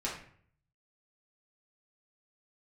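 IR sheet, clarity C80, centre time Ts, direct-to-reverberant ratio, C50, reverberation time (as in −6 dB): 9.0 dB, 35 ms, −6.0 dB, 5.0 dB, 0.55 s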